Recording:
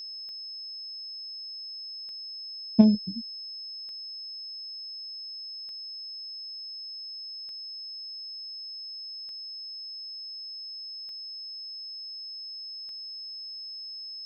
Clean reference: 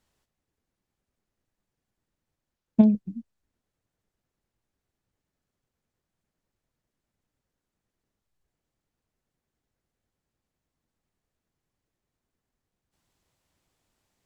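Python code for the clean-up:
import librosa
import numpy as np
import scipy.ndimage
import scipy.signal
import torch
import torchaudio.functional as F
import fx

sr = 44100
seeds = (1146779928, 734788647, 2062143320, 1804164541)

y = fx.fix_declick_ar(x, sr, threshold=10.0)
y = fx.notch(y, sr, hz=5200.0, q=30.0)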